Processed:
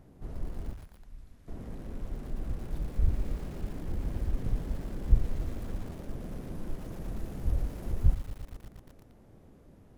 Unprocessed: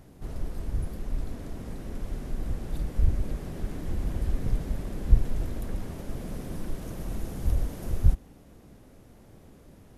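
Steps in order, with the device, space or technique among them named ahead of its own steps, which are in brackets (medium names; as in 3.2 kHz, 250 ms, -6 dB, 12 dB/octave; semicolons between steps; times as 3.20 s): behind a face mask (treble shelf 2 kHz -8 dB); 0.73–1.48 s: amplifier tone stack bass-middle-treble 5-5-5; bit-crushed delay 116 ms, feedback 80%, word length 6-bit, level -15 dB; trim -3.5 dB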